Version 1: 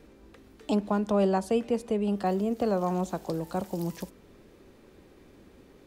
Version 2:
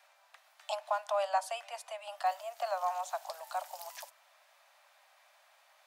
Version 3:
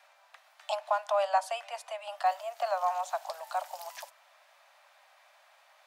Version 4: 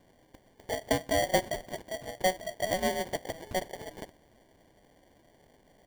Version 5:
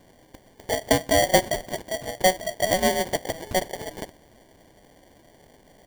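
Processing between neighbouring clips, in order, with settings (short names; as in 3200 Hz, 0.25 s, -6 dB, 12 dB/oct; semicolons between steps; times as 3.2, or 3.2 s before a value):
steep high-pass 610 Hz 96 dB/oct
high shelf 5700 Hz -6 dB; gain +4 dB
sample-rate reducer 1300 Hz, jitter 0%
tone controls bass 0 dB, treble +3 dB; gain +7.5 dB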